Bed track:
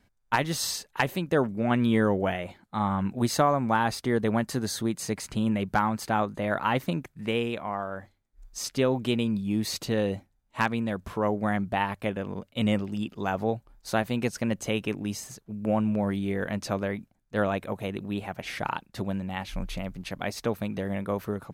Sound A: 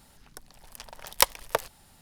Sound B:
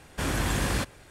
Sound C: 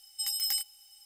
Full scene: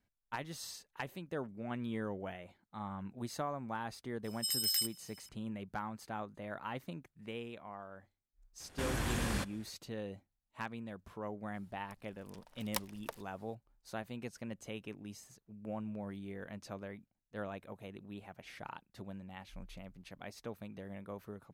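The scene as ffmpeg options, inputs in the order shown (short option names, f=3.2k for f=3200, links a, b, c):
-filter_complex "[0:a]volume=-16dB[a];[3:a]highpass=f=1.2k:w=0.5412,highpass=f=1.2k:w=1.3066,atrim=end=1.05,asetpts=PTS-STARTPTS,volume=-2.5dB,afade=t=in:d=0.004:c=hsin,afade=t=out:st=1.046:d=0.004:c=hsin,adelay=4240[b];[2:a]atrim=end=1.1,asetpts=PTS-STARTPTS,volume=-8.5dB,afade=t=in:d=0.004:c=hsin,afade=t=out:st=1.096:d=0.004:c=hsin,adelay=8600[c];[1:a]atrim=end=2.01,asetpts=PTS-STARTPTS,volume=-17dB,afade=t=in:d=0.004:c=hsin,afade=t=out:st=2.006:d=0.004:c=hsin,adelay=508914S[d];[a][b][c][d]amix=inputs=4:normalize=0"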